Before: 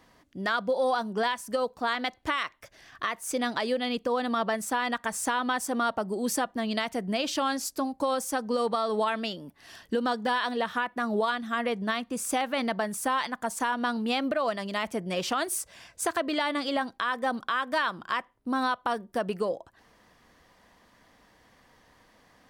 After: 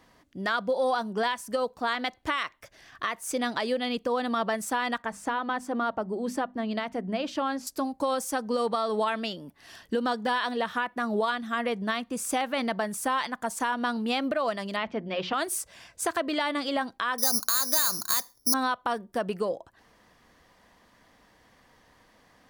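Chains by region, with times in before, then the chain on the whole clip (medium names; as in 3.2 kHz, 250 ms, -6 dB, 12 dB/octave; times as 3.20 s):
5.02–7.67 s: low-pass 1.7 kHz 6 dB/octave + hum notches 50/100/150/200/250 Hz
14.76–15.34 s: low-pass 4 kHz 24 dB/octave + hum notches 60/120/180/240/300/360 Hz
17.18–18.54 s: compression 5:1, threshold -29 dBFS + careless resampling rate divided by 8×, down filtered, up zero stuff
whole clip: none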